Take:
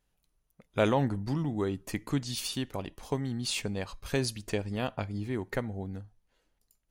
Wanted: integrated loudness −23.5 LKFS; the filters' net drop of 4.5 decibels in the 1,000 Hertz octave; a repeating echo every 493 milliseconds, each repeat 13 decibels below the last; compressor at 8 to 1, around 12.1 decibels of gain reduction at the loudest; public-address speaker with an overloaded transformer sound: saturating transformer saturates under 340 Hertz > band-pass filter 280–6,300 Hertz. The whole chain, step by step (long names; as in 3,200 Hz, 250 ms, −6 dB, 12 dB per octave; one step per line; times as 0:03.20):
parametric band 1,000 Hz −6 dB
downward compressor 8 to 1, threshold −35 dBFS
repeating echo 493 ms, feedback 22%, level −13 dB
saturating transformer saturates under 340 Hz
band-pass filter 280–6,300 Hz
level +21 dB